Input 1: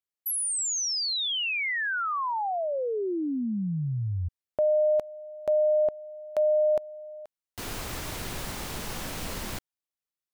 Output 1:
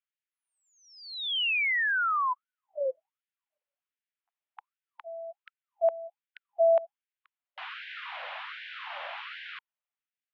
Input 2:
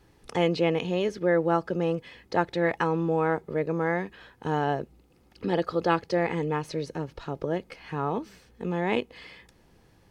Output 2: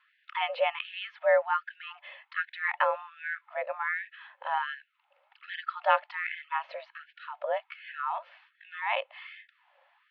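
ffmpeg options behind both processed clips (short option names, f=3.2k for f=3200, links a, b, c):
-af "highpass=f=230:t=q:w=0.5412,highpass=f=230:t=q:w=1.307,lowpass=f=3.2k:t=q:w=0.5176,lowpass=f=3.2k:t=q:w=0.7071,lowpass=f=3.2k:t=q:w=1.932,afreqshift=53,afftfilt=real='re*gte(b*sr/1024,510*pow(1500/510,0.5+0.5*sin(2*PI*1.3*pts/sr)))':imag='im*gte(b*sr/1024,510*pow(1500/510,0.5+0.5*sin(2*PI*1.3*pts/sr)))':win_size=1024:overlap=0.75,volume=2dB"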